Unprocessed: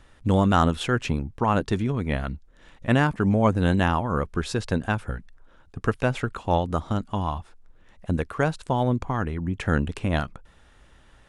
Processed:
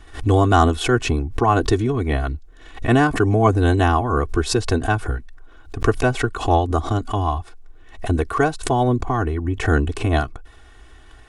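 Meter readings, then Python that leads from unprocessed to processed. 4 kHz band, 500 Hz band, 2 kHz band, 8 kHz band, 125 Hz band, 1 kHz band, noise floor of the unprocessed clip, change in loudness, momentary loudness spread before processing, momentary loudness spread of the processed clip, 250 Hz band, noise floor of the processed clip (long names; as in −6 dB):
+6.0 dB, +6.5 dB, +5.0 dB, +10.0 dB, +5.0 dB, +6.0 dB, −55 dBFS, +5.0 dB, 10 LU, 8 LU, +3.5 dB, −45 dBFS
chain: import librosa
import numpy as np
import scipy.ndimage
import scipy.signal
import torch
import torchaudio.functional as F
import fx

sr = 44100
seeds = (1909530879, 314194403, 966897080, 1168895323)

y = fx.dynamic_eq(x, sr, hz=2400.0, q=0.84, threshold_db=-42.0, ratio=4.0, max_db=-5)
y = y + 1.0 * np.pad(y, (int(2.7 * sr / 1000.0), 0))[:len(y)]
y = fx.pre_swell(y, sr, db_per_s=140.0)
y = y * 10.0 ** (4.0 / 20.0)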